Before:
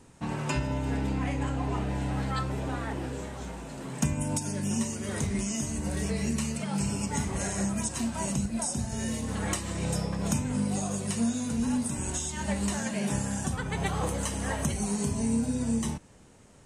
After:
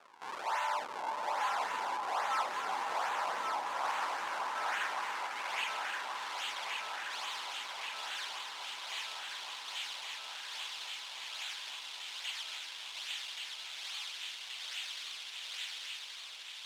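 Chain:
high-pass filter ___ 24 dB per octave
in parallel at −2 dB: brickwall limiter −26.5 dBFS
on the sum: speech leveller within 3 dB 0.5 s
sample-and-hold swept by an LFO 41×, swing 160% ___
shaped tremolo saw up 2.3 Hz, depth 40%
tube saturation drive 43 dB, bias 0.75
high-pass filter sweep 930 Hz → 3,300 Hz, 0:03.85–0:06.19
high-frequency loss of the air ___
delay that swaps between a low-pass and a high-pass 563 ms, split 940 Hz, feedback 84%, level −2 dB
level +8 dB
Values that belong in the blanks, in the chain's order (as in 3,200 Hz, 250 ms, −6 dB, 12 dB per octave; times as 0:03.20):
690 Hz, 1.2 Hz, 54 metres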